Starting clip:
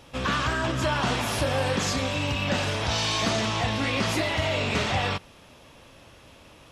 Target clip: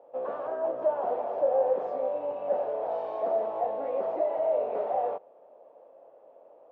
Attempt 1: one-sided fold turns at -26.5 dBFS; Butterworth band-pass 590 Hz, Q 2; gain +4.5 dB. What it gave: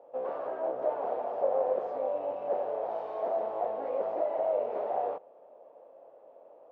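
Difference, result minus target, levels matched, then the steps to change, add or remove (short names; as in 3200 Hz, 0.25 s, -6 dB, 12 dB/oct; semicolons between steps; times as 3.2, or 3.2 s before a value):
one-sided fold: distortion +22 dB
change: one-sided fold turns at -17.5 dBFS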